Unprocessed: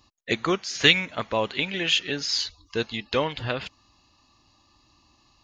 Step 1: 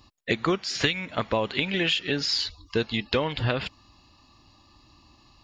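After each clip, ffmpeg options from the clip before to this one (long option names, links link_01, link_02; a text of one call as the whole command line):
ffmpeg -i in.wav -af "acompressor=threshold=-25dB:ratio=12,lowshelf=frequency=350:gain=4,bandreject=frequency=6300:width=5.9,volume=3.5dB" out.wav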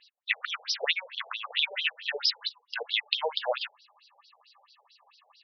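ffmpeg -i in.wav -af "afftfilt=real='re*between(b*sr/1024,590*pow(4400/590,0.5+0.5*sin(2*PI*4.5*pts/sr))/1.41,590*pow(4400/590,0.5+0.5*sin(2*PI*4.5*pts/sr))*1.41)':imag='im*between(b*sr/1024,590*pow(4400/590,0.5+0.5*sin(2*PI*4.5*pts/sr))/1.41,590*pow(4400/590,0.5+0.5*sin(2*PI*4.5*pts/sr))*1.41)':win_size=1024:overlap=0.75,volume=5dB" out.wav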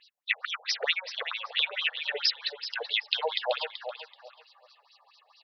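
ffmpeg -i in.wav -filter_complex "[0:a]asplit=2[link_01][link_02];[link_02]adelay=381,lowpass=frequency=4700:poles=1,volume=-8.5dB,asplit=2[link_03][link_04];[link_04]adelay=381,lowpass=frequency=4700:poles=1,volume=0.25,asplit=2[link_05][link_06];[link_06]adelay=381,lowpass=frequency=4700:poles=1,volume=0.25[link_07];[link_01][link_03][link_05][link_07]amix=inputs=4:normalize=0" out.wav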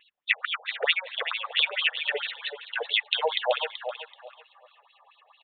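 ffmpeg -i in.wav -af "aresample=8000,aresample=44100,volume=4dB" out.wav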